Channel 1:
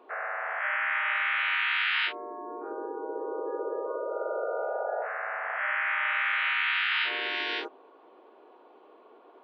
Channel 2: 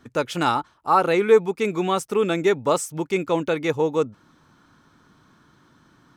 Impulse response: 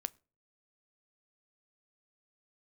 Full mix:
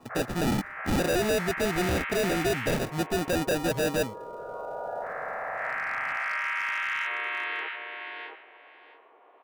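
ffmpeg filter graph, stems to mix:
-filter_complex "[0:a]acrossover=split=570 2400:gain=0.251 1 0.0708[link_01][link_02][link_03];[link_01][link_02][link_03]amix=inputs=3:normalize=0,volume=-0.5dB,asplit=2[link_04][link_05];[link_05]volume=-3.5dB[link_06];[1:a]acrusher=samples=41:mix=1:aa=0.000001,volume=0dB,asplit=2[link_07][link_08];[link_08]apad=whole_len=416221[link_09];[link_04][link_09]sidechaincompress=threshold=-27dB:ratio=8:attack=36:release=1060[link_10];[link_06]aecho=0:1:670|1340|2010:1|0.18|0.0324[link_11];[link_10][link_07][link_11]amix=inputs=3:normalize=0,volume=23dB,asoftclip=hard,volume=-23dB,bandreject=frequency=1500:width=19"

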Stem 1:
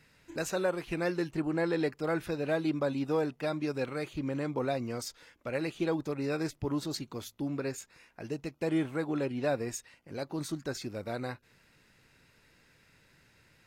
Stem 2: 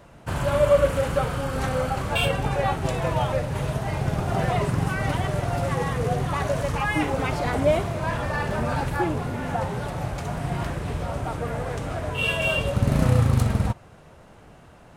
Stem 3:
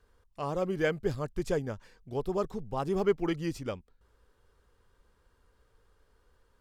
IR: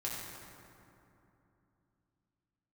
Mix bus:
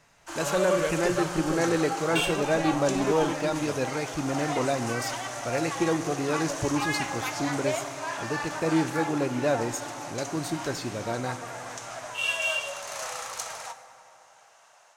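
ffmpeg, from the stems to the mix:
-filter_complex "[0:a]volume=-3.5dB,asplit=2[link_01][link_02];[link_02]volume=-11dB[link_03];[1:a]highpass=frequency=670:width=0.5412,highpass=frequency=670:width=1.3066,equalizer=frequency=6300:width_type=o:width=0.74:gain=13.5,volume=-12.5dB,asplit=2[link_04][link_05];[link_05]volume=-8.5dB[link_06];[2:a]volume=-10dB[link_07];[3:a]atrim=start_sample=2205[link_08];[link_03][link_06]amix=inputs=2:normalize=0[link_09];[link_09][link_08]afir=irnorm=-1:irlink=0[link_10];[link_01][link_04][link_07][link_10]amix=inputs=4:normalize=0,dynaudnorm=framelen=210:gausssize=3:maxgain=6.5dB"

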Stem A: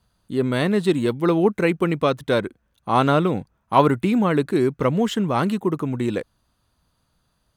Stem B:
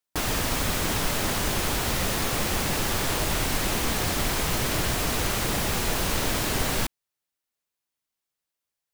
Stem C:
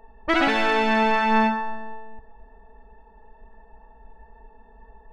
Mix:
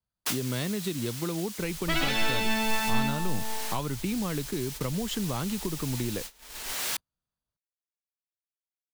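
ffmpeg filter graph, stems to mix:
ffmpeg -i stem1.wav -i stem2.wav -i stem3.wav -filter_complex "[0:a]acompressor=threshold=-23dB:ratio=2,volume=-0.5dB,asplit=2[link_01][link_02];[1:a]highpass=frequency=1200:poles=1,highshelf=frequency=2100:gain=4.5,adelay=100,volume=-0.5dB[link_03];[2:a]adelay=1600,volume=3dB[link_04];[link_02]apad=whole_len=398504[link_05];[link_03][link_05]sidechaincompress=threshold=-33dB:ratio=6:attack=11:release=1210[link_06];[link_01][link_06][link_04]amix=inputs=3:normalize=0,agate=range=-24dB:threshold=-32dB:ratio=16:detection=peak,acrossover=split=150|3000[link_07][link_08][link_09];[link_08]acompressor=threshold=-33dB:ratio=4[link_10];[link_07][link_10][link_09]amix=inputs=3:normalize=0" out.wav

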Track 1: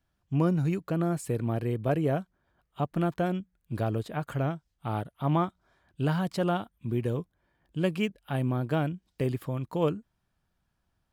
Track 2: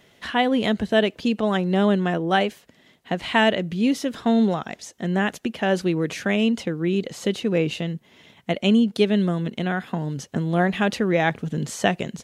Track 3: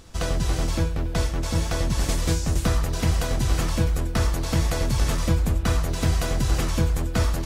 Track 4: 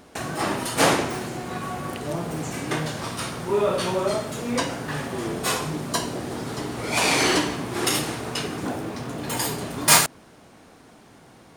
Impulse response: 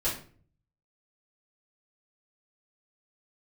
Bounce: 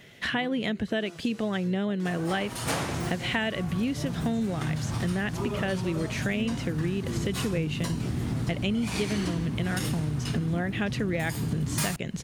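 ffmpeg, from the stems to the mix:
-filter_complex "[0:a]flanger=delay=20:depth=5.3:speed=0.88,volume=-6dB[link_01];[1:a]equalizer=frequency=125:width_type=o:width=1:gain=6,equalizer=frequency=1000:width_type=o:width=1:gain=-5,equalizer=frequency=2000:width_type=o:width=1:gain=5,volume=2.5dB[link_02];[2:a]highpass=1300,adelay=850,volume=-10dB[link_03];[3:a]asubboost=boost=11:cutoff=160,adelay=1900,volume=-2dB[link_04];[link_01][link_02][link_03][link_04]amix=inputs=4:normalize=0,acompressor=threshold=-26dB:ratio=6"

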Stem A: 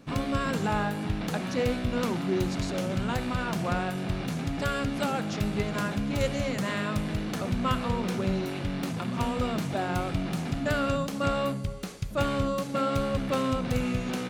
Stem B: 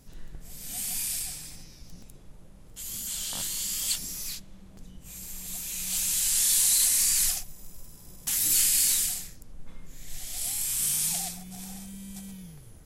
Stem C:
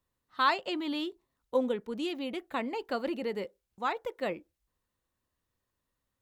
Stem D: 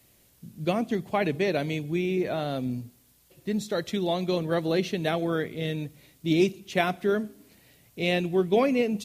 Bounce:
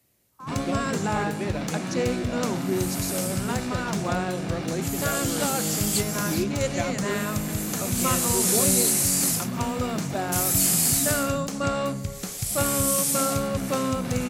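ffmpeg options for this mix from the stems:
ffmpeg -i stem1.wav -i stem2.wav -i stem3.wav -i stem4.wav -filter_complex "[0:a]equalizer=frequency=7000:width_type=o:width=1.1:gain=9,adelay=400,volume=1.5dB[link_01];[1:a]dynaudnorm=framelen=470:gausssize=5:maxgain=9dB,adelay=2050,volume=-6dB[link_02];[2:a]bandpass=frequency=960:width_type=q:width=6.7:csg=0,volume=-9dB[link_03];[3:a]volume=-6.5dB[link_04];[link_01][link_02][link_03][link_04]amix=inputs=4:normalize=0,highpass=60,equalizer=frequency=3300:width=1.8:gain=-4" out.wav

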